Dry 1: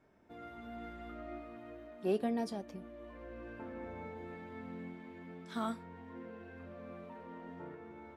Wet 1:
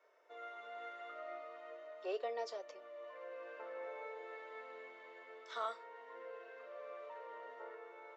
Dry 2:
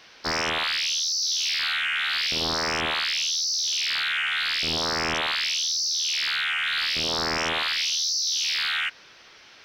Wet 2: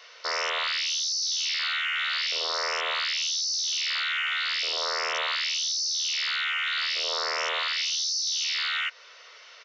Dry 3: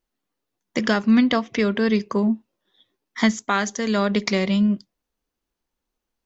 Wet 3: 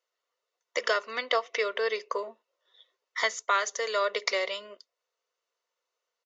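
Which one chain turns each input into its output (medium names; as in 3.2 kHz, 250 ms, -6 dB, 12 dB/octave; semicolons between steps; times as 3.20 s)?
in parallel at -1 dB: compression, threshold -36 dBFS; on the sum: comb of notches 820 Hz; resampled via 16 kHz; elliptic high-pass 470 Hz, stop band 80 dB; trim -2.5 dB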